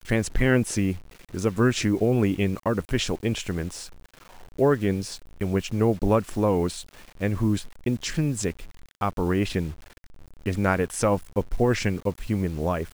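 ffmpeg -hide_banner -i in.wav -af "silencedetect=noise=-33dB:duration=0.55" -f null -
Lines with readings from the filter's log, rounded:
silence_start: 3.86
silence_end: 4.59 | silence_duration: 0.72
silence_start: 9.73
silence_end: 10.46 | silence_duration: 0.72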